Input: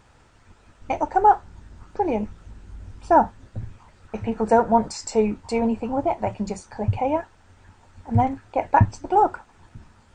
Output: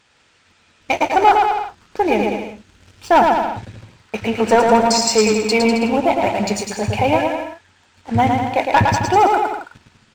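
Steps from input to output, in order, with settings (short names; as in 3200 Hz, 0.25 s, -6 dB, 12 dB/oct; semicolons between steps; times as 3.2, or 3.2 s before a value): weighting filter D; sample leveller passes 2; on a send: bouncing-ball echo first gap 0.11 s, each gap 0.8×, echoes 5; on the sum: gain -1 dB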